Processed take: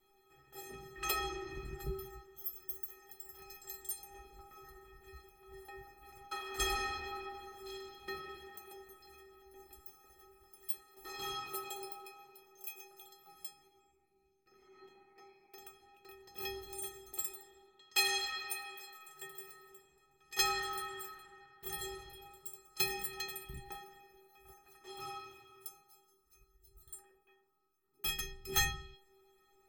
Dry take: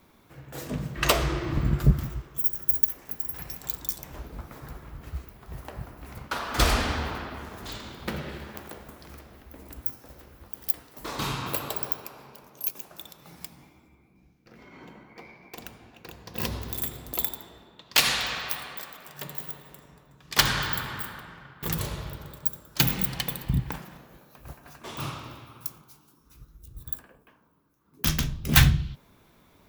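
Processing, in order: metallic resonator 380 Hz, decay 0.63 s, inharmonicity 0.03; gain +9.5 dB

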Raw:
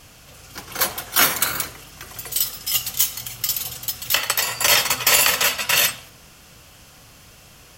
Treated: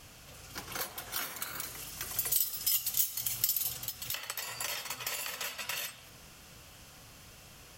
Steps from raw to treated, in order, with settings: compressor 12:1, threshold -28 dBFS, peak gain reduction 17.5 dB; 1.63–3.72 high shelf 4900 Hz +10 dB; gain -6 dB

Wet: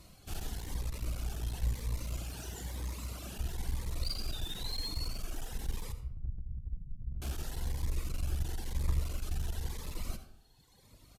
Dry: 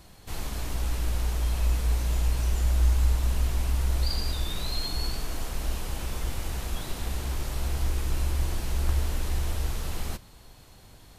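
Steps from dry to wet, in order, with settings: 5.92–7.22 inverse Chebyshev low-pass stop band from 730 Hz, stop band 70 dB; echo 85 ms -15 dB; reverb removal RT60 1.8 s; 2.17–3.37 HPF 110 Hz 12 dB/oct; one-sided clip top -33.5 dBFS; reverb RT60 0.65 s, pre-delay 63 ms, DRR 10 dB; cascading phaser rising 1 Hz; gain -3 dB

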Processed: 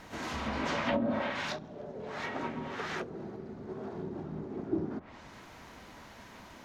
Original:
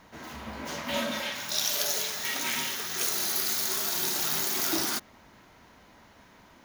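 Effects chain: treble ducked by the level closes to 320 Hz, closed at -25 dBFS; harmoniser -12 st -15 dB, +3 st -8 dB; gain +4 dB

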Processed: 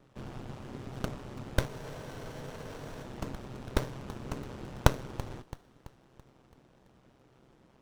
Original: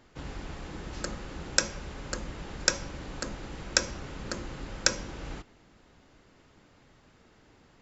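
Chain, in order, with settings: HPF 46 Hz; ring modulator 65 Hz; on a send: thin delay 0.333 s, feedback 49%, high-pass 2700 Hz, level -13.5 dB; on the sum: spectral freeze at 1.69, 1.34 s; running maximum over 17 samples; gain +1.5 dB

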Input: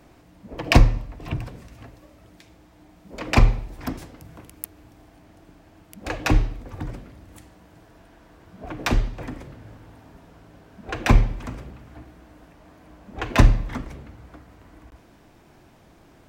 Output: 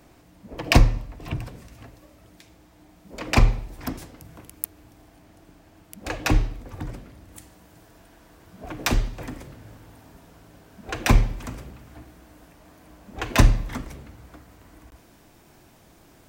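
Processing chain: high shelf 5500 Hz +6.5 dB, from 7.38 s +12 dB; gain -1.5 dB

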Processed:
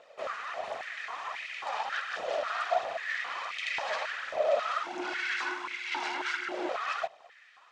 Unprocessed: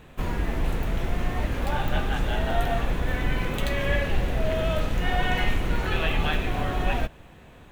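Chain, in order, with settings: minimum comb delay 1.6 ms; full-wave rectifier; 4.83–6.69 frequency shift -360 Hz; phaser 1.4 Hz, delay 4.9 ms, feedback 43%; LPF 7000 Hz 24 dB/oct; stepped high-pass 3.7 Hz 580–2200 Hz; gain -6 dB

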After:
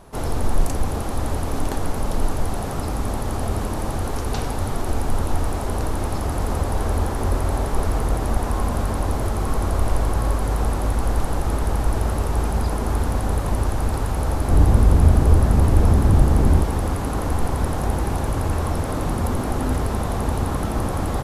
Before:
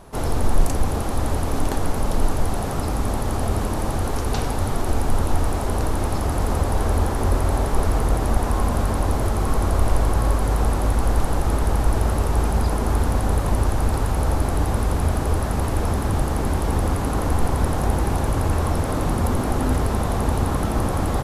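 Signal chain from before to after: 14.49–16.64 low shelf 370 Hz +9.5 dB; gain -1.5 dB

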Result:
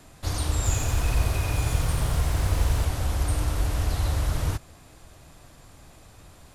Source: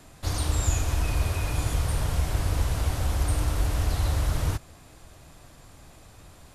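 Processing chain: 0.56–2.85 lo-fi delay 87 ms, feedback 55%, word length 8-bit, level -4.5 dB

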